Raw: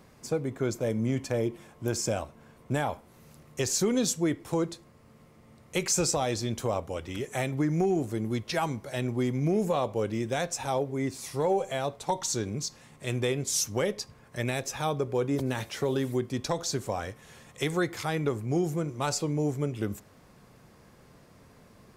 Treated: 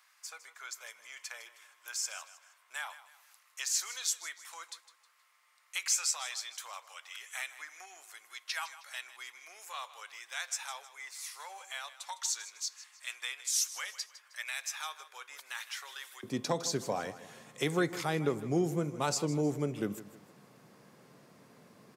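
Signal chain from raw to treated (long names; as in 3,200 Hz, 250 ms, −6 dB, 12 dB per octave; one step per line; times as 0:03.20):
high-pass filter 1,200 Hz 24 dB per octave, from 0:16.23 140 Hz
repeating echo 157 ms, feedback 38%, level −15 dB
level −2 dB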